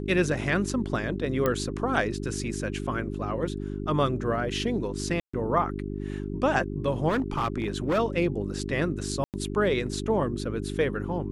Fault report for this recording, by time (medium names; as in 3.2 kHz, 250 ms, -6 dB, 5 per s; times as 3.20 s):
hum 50 Hz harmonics 8 -33 dBFS
1.46 s: pop -12 dBFS
5.20–5.33 s: dropout 135 ms
7.08–7.99 s: clipped -21.5 dBFS
9.24–9.34 s: dropout 98 ms